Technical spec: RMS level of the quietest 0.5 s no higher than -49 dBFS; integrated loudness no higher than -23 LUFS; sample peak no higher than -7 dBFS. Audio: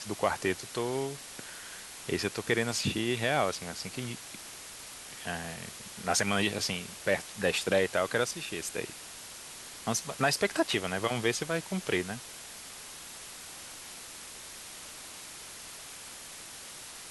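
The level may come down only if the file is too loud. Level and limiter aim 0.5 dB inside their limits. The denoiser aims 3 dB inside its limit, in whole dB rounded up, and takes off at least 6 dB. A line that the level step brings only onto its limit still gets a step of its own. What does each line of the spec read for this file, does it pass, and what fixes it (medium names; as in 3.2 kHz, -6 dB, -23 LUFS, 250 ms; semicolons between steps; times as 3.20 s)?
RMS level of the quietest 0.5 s -46 dBFS: fail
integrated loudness -33.0 LUFS: pass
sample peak -12.0 dBFS: pass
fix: noise reduction 6 dB, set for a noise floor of -46 dBFS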